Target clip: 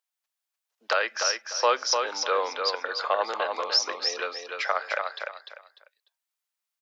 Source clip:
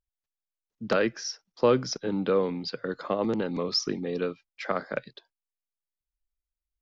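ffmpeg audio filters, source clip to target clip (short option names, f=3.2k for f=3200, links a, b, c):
-filter_complex "[0:a]highpass=f=680:w=0.5412,highpass=f=680:w=1.3066,alimiter=limit=-19.5dB:level=0:latency=1:release=147,asplit=2[a][b];[b]aecho=0:1:298|596|894:0.562|0.146|0.038[c];[a][c]amix=inputs=2:normalize=0,volume=8dB"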